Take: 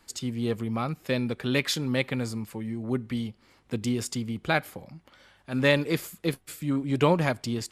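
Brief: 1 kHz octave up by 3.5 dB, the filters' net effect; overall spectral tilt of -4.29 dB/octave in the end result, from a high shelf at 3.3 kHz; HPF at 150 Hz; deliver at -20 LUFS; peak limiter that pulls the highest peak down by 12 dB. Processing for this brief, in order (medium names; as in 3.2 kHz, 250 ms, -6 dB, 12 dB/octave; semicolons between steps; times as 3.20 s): high-pass 150 Hz; peaking EQ 1 kHz +4 dB; treble shelf 3.3 kHz +4.5 dB; trim +10.5 dB; peak limiter -6 dBFS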